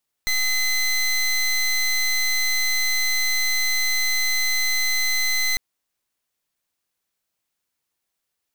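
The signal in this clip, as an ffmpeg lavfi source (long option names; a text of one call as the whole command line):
ffmpeg -f lavfi -i "aevalsrc='0.0891*(2*lt(mod(2040*t,1),0.21)-1)':duration=5.3:sample_rate=44100" out.wav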